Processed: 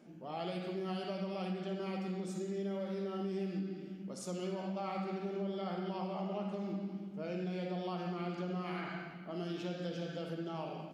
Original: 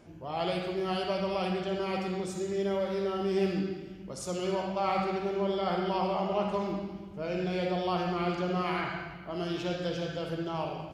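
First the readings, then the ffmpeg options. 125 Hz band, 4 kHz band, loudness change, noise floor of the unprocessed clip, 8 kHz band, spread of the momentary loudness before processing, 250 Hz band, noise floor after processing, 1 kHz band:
-5.0 dB, -10.0 dB, -8.0 dB, -44 dBFS, -7.5 dB, 7 LU, -5.0 dB, -48 dBFS, -10.5 dB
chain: -af "lowshelf=f=130:t=q:w=3:g=-14,acompressor=threshold=0.0355:ratio=4,bandreject=f=1000:w=13,volume=0.473"

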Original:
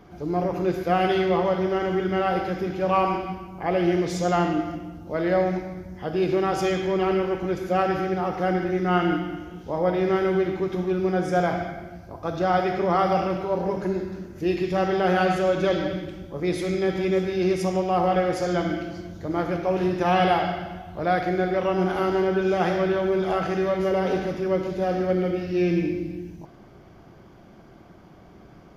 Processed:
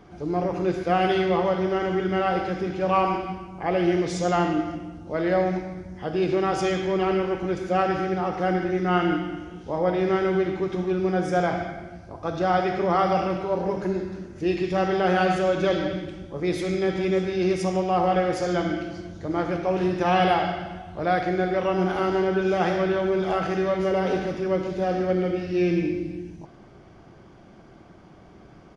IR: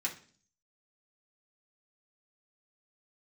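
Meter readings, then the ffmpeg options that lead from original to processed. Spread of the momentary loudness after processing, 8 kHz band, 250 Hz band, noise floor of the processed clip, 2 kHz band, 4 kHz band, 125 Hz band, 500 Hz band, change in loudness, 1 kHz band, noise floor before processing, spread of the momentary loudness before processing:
9 LU, no reading, 0.0 dB, -49 dBFS, +0.5 dB, +0.5 dB, -0.5 dB, -0.5 dB, 0.0 dB, 0.0 dB, -49 dBFS, 9 LU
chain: -filter_complex "[0:a]asplit=2[s0][s1];[1:a]atrim=start_sample=2205[s2];[s1][s2]afir=irnorm=-1:irlink=0,volume=0.0841[s3];[s0][s3]amix=inputs=2:normalize=0,aresample=22050,aresample=44100"

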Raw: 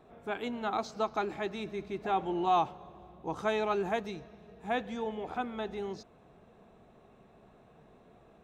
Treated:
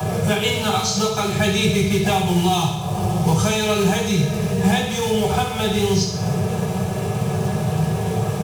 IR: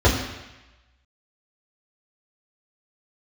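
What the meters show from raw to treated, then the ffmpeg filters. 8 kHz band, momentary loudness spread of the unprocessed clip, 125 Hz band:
no reading, 14 LU, +30.0 dB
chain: -filter_complex "[0:a]lowshelf=f=81:g=8,asplit=2[s0][s1];[s1]acompressor=mode=upward:threshold=0.0126:ratio=2.5,volume=0.891[s2];[s0][s2]amix=inputs=2:normalize=0,alimiter=limit=0.106:level=0:latency=1:release=436,acrossover=split=120|3000[s3][s4][s5];[s4]acompressor=threshold=0.00708:ratio=5[s6];[s3][s6][s5]amix=inputs=3:normalize=0,acrossover=split=110|1200[s7][s8][s9];[s8]acrusher=bits=3:mode=log:mix=0:aa=0.000001[s10];[s7][s10][s9]amix=inputs=3:normalize=0,crystalizer=i=8.5:c=0,aecho=1:1:63|126|189|252|315|378|441:0.316|0.18|0.103|0.0586|0.0334|0.019|0.0108[s11];[1:a]atrim=start_sample=2205,asetrate=74970,aresample=44100[s12];[s11][s12]afir=irnorm=-1:irlink=0,volume=0.708"

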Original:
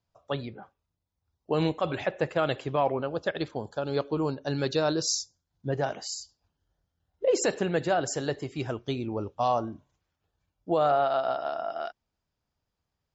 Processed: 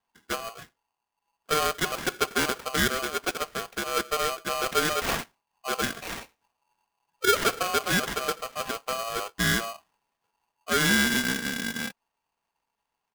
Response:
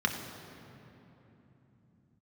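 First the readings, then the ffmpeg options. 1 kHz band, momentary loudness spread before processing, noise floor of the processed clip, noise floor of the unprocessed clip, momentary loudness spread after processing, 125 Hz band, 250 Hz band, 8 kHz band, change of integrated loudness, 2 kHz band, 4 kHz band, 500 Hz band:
+0.5 dB, 10 LU, -84 dBFS, -84 dBFS, 12 LU, -3.0 dB, 0.0 dB, no reading, +2.5 dB, +11.0 dB, +8.5 dB, -4.0 dB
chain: -af "acrusher=samples=14:mix=1:aa=0.000001,aecho=1:1:4.2:0.42,aeval=exprs='val(0)*sgn(sin(2*PI*910*n/s))':c=same"

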